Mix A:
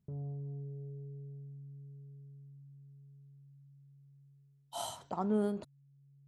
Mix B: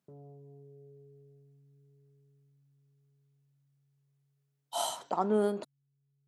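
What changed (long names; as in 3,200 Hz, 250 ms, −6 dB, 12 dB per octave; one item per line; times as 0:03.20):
speech +7.0 dB
master: add high-pass filter 300 Hz 12 dB per octave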